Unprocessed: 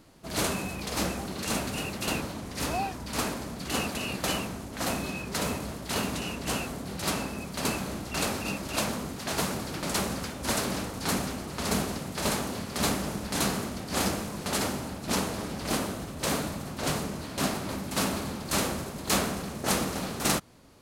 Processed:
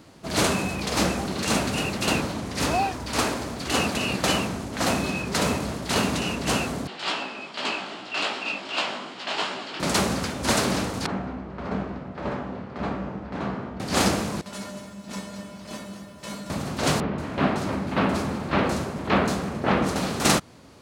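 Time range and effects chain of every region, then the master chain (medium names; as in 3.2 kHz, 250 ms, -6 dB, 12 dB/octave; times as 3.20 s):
2.76–3.80 s: peaking EQ 180 Hz -7.5 dB 0.53 oct + companded quantiser 8-bit
6.87–9.80 s: cabinet simulation 430–6400 Hz, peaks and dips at 490 Hz -6 dB, 3 kHz +8 dB, 6.1 kHz -9 dB + chorus 2.6 Hz, delay 15.5 ms, depth 4.7 ms
11.06–13.80 s: low-pass 1.6 kHz + feedback comb 64 Hz, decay 0.52 s, mix 70%
14.41–16.50 s: feedback comb 200 Hz, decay 0.36 s, harmonics odd, mix 90% + bit-crushed delay 224 ms, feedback 35%, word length 11-bit, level -9 dB
17.00–19.96 s: tone controls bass 0 dB, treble -14 dB + bands offset in time lows, highs 180 ms, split 4.1 kHz
whole clip: high-pass 62 Hz; peaking EQ 13 kHz -9.5 dB 0.7 oct; trim +7 dB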